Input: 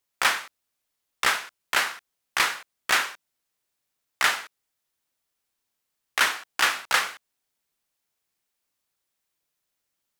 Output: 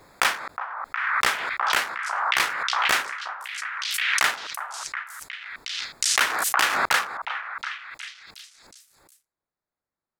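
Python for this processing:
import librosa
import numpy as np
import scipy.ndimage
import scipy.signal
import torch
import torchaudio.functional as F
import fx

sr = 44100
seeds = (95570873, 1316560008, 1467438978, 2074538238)

y = fx.wiener(x, sr, points=15)
y = fx.echo_stepped(y, sr, ms=363, hz=980.0, octaves=0.7, feedback_pct=70, wet_db=-5.5)
y = fx.pre_swell(y, sr, db_per_s=26.0)
y = y * 10.0 ** (-1.0 / 20.0)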